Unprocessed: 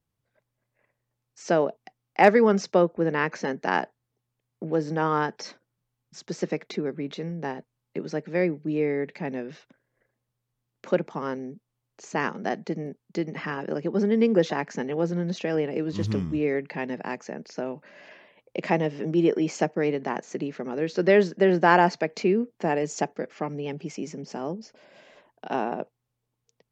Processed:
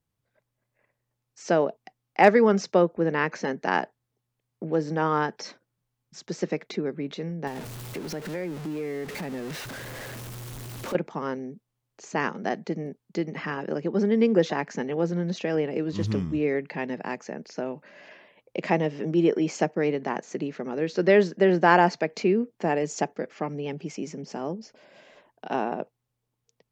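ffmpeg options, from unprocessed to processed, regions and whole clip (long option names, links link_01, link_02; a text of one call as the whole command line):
ffmpeg -i in.wav -filter_complex "[0:a]asettb=1/sr,asplit=3[link_01][link_02][link_03];[link_01]atrim=end=7.474[link_04];[link_02]atrim=start=7.47:end=10.95,asetpts=PTS-STARTPTS,afade=type=in:duration=0.004:curve=qsin,afade=type=out:start_time=3.476:duration=0.004:curve=qsin,aeval=exprs='val(0)+0.5*0.0251*sgn(val(0))':channel_layout=same,acompressor=threshold=-31dB:ratio=3:attack=3.2:release=140:knee=1:detection=peak[link_05];[link_03]atrim=start=10.946[link_06];[link_04][link_05]acrossfade=duration=0.004:curve1=hsin:curve2=qsin[link_07];[link_07][link_06]acrossfade=duration=0.004:curve1=qsin:curve2=hsin" out.wav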